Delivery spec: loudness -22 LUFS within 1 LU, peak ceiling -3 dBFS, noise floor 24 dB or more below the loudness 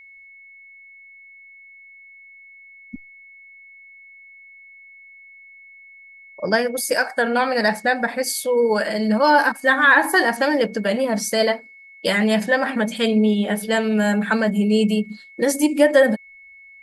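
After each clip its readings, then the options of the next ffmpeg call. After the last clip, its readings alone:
steady tone 2200 Hz; tone level -43 dBFS; loudness -19.0 LUFS; peak -3.0 dBFS; loudness target -22.0 LUFS
-> -af "bandreject=f=2.2k:w=30"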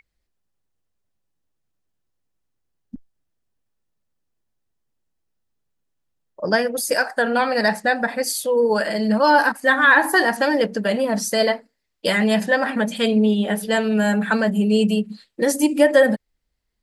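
steady tone none; loudness -19.0 LUFS; peak -3.0 dBFS; loudness target -22.0 LUFS
-> -af "volume=-3dB"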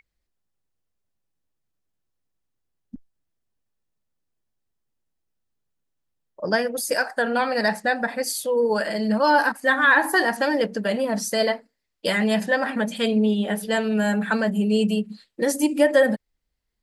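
loudness -22.0 LUFS; peak -6.0 dBFS; noise floor -78 dBFS

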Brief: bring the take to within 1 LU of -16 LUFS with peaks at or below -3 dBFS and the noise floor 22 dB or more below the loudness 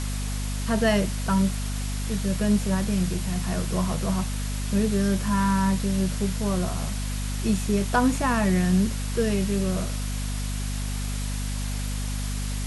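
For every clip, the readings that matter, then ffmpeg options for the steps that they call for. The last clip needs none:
hum 50 Hz; harmonics up to 250 Hz; hum level -27 dBFS; noise floor -29 dBFS; noise floor target -48 dBFS; loudness -26.0 LUFS; peak -9.5 dBFS; loudness target -16.0 LUFS
-> -af "bandreject=f=50:t=h:w=4,bandreject=f=100:t=h:w=4,bandreject=f=150:t=h:w=4,bandreject=f=200:t=h:w=4,bandreject=f=250:t=h:w=4"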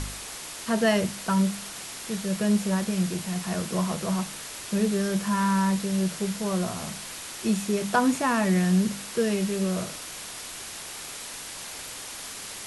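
hum none; noise floor -39 dBFS; noise floor target -50 dBFS
-> -af "afftdn=nr=11:nf=-39"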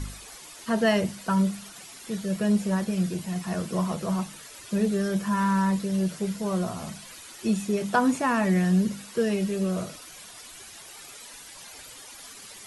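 noise floor -45 dBFS; noise floor target -49 dBFS
-> -af "afftdn=nr=6:nf=-45"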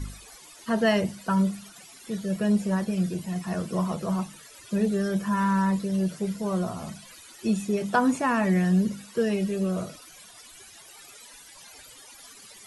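noise floor -49 dBFS; loudness -26.5 LUFS; peak -10.0 dBFS; loudness target -16.0 LUFS
-> -af "volume=10.5dB,alimiter=limit=-3dB:level=0:latency=1"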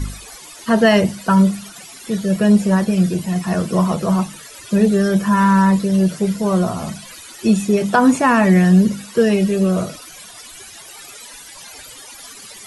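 loudness -16.0 LUFS; peak -3.0 dBFS; noise floor -39 dBFS

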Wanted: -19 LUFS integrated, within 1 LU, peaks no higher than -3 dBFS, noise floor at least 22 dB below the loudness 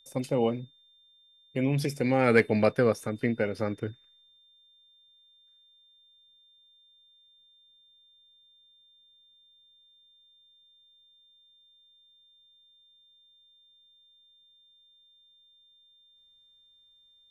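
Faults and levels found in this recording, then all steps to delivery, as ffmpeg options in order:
steady tone 3600 Hz; tone level -59 dBFS; loudness -27.5 LUFS; peak -8.0 dBFS; loudness target -19.0 LUFS
-> -af "bandreject=f=3.6k:w=30"
-af "volume=8.5dB,alimiter=limit=-3dB:level=0:latency=1"

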